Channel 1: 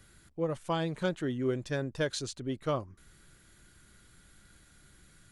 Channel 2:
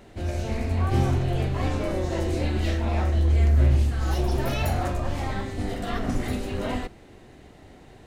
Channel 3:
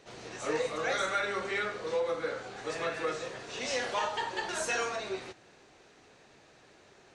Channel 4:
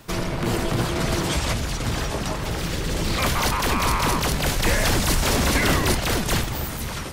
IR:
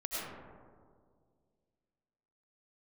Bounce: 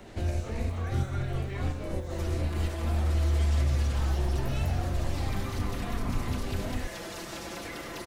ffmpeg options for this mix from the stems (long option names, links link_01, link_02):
-filter_complex "[0:a]acrusher=bits=4:mode=log:mix=0:aa=0.000001,volume=-19dB,asplit=2[link_01][link_02];[1:a]acompressor=threshold=-27dB:ratio=1.5,volume=1.5dB[link_03];[2:a]volume=-9dB[link_04];[3:a]highpass=350,aecho=1:1:5.9:0.91,acompressor=threshold=-21dB:ratio=6,adelay=2100,volume=-13.5dB,asplit=2[link_05][link_06];[link_06]volume=-3.5dB[link_07];[link_02]apad=whole_len=355479[link_08];[link_03][link_08]sidechaincompress=threshold=-53dB:ratio=8:attack=10:release=200[link_09];[4:a]atrim=start_sample=2205[link_10];[link_07][link_10]afir=irnorm=-1:irlink=0[link_11];[link_01][link_09][link_04][link_05][link_11]amix=inputs=5:normalize=0,acrossover=split=180|410|7400[link_12][link_13][link_14][link_15];[link_12]acompressor=threshold=-23dB:ratio=4[link_16];[link_13]acompressor=threshold=-43dB:ratio=4[link_17];[link_14]acompressor=threshold=-40dB:ratio=4[link_18];[link_15]acompressor=threshold=-55dB:ratio=4[link_19];[link_16][link_17][link_18][link_19]amix=inputs=4:normalize=0"